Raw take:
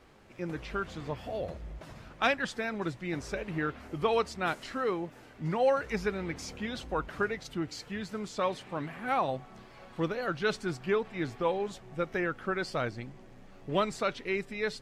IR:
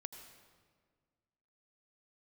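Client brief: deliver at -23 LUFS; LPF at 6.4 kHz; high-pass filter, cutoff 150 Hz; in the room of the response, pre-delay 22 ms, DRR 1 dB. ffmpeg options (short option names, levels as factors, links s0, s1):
-filter_complex "[0:a]highpass=150,lowpass=6400,asplit=2[s0][s1];[1:a]atrim=start_sample=2205,adelay=22[s2];[s1][s2]afir=irnorm=-1:irlink=0,volume=1.41[s3];[s0][s3]amix=inputs=2:normalize=0,volume=2.37"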